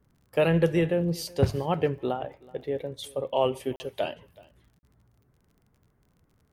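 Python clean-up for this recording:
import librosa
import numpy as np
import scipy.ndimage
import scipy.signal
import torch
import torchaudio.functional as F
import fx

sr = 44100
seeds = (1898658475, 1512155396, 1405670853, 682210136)

y = fx.fix_declick_ar(x, sr, threshold=6.5)
y = fx.fix_interpolate(y, sr, at_s=(3.76, 4.79), length_ms=40.0)
y = fx.fix_echo_inverse(y, sr, delay_ms=376, level_db=-23.5)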